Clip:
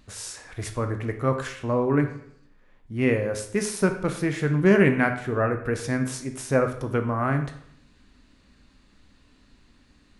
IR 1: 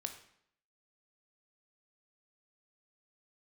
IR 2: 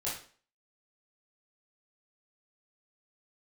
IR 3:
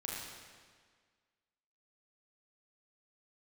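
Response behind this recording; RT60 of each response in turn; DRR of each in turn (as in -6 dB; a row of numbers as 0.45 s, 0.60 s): 1; 0.70 s, 0.45 s, 1.7 s; 6.0 dB, -8.5 dB, -4.5 dB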